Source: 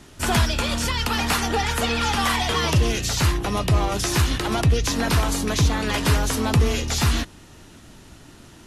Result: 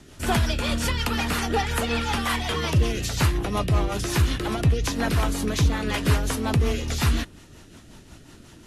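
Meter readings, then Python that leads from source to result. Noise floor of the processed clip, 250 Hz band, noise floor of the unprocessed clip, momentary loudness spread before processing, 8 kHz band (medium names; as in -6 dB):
-49 dBFS, -1.5 dB, -47 dBFS, 2 LU, -5.5 dB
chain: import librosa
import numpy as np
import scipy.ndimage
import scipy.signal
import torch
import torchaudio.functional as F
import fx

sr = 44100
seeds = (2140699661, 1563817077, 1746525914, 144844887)

y = fx.dynamic_eq(x, sr, hz=5800.0, q=0.94, threshold_db=-41.0, ratio=4.0, max_db=-4)
y = fx.rider(y, sr, range_db=10, speed_s=0.5)
y = fx.rotary(y, sr, hz=5.5)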